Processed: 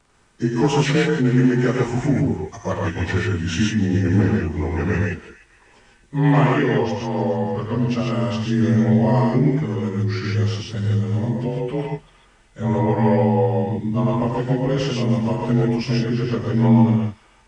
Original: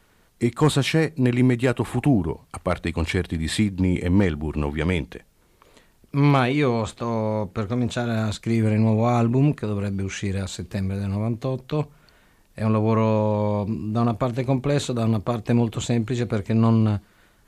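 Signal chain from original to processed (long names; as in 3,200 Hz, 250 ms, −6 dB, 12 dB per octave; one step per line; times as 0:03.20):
partials spread apart or drawn together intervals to 90%
delay with a high-pass on its return 301 ms, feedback 47%, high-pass 1,800 Hz, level −16 dB
reverb whose tail is shaped and stops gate 170 ms rising, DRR −1.5 dB
level +1 dB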